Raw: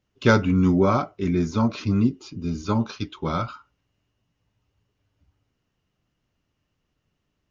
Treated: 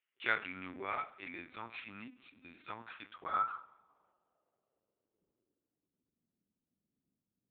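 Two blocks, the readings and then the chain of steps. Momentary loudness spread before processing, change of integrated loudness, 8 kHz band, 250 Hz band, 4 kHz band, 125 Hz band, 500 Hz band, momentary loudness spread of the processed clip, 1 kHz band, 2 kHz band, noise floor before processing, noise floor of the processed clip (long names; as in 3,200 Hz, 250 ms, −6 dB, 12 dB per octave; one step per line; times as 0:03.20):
12 LU, −17.0 dB, can't be measured, −30.5 dB, −13.5 dB, −36.5 dB, −24.0 dB, 17 LU, −10.5 dB, −7.5 dB, −77 dBFS, below −85 dBFS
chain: high-pass filter 100 Hz 6 dB per octave
coupled-rooms reverb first 0.65 s, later 2.6 s, from −19 dB, DRR 10.5 dB
linear-prediction vocoder at 8 kHz pitch kept
band-pass filter sweep 2,200 Hz → 220 Hz, 0:02.60–0:06.32
level −2.5 dB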